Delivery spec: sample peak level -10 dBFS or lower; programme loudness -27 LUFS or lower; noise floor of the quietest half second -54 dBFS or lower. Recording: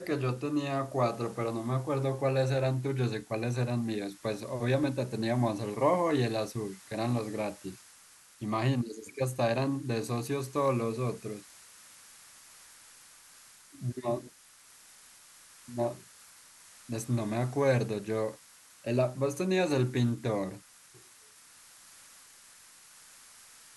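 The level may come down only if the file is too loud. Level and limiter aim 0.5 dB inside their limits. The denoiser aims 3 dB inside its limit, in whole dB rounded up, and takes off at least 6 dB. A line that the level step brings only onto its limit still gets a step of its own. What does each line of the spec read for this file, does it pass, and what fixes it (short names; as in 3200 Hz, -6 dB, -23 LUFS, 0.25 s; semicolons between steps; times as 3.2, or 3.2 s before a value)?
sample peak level -14.0 dBFS: OK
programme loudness -31.5 LUFS: OK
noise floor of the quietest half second -57 dBFS: OK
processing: none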